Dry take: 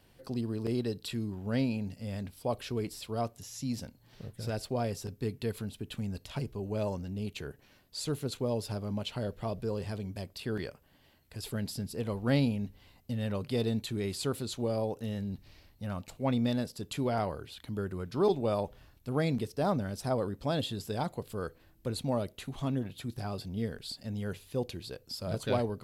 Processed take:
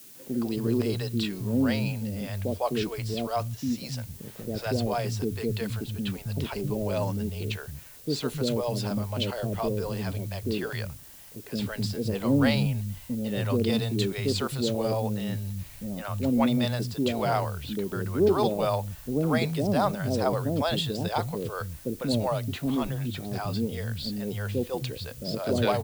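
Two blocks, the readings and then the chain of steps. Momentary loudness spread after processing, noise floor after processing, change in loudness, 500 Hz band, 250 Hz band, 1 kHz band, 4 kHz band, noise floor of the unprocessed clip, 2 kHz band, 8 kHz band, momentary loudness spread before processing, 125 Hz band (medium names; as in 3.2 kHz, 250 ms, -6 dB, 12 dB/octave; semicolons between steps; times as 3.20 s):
9 LU, -46 dBFS, +6.0 dB, +5.5 dB, +6.5 dB, +7.0 dB, +7.0 dB, -63 dBFS, +8.0 dB, +4.5 dB, 9 LU, +5.5 dB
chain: level-controlled noise filter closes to 2.7 kHz, open at -25.5 dBFS; three bands offset in time mids, highs, lows 150/270 ms, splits 150/510 Hz; added noise blue -57 dBFS; trim +8 dB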